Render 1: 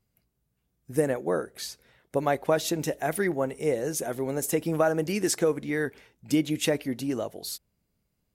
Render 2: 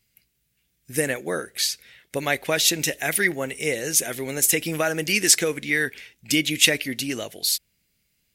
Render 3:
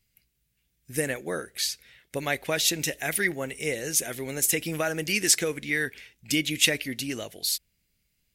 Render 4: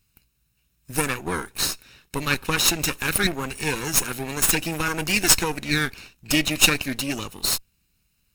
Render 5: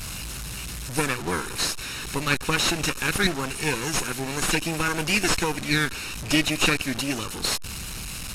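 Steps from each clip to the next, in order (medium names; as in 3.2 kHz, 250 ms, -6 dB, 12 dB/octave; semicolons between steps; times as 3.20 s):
resonant high shelf 1.5 kHz +12.5 dB, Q 1.5
bass shelf 69 Hz +10.5 dB; trim -4.5 dB
comb filter that takes the minimum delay 0.75 ms; trim +6 dB
one-bit delta coder 64 kbps, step -27 dBFS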